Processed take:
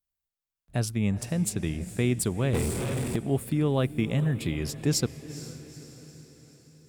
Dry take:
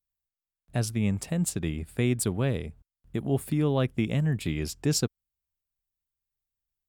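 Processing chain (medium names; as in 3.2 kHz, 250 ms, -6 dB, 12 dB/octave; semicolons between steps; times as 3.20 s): echo that smears into a reverb 455 ms, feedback 53%, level -14 dB; 2.53–3.16 s: power-law waveshaper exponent 0.5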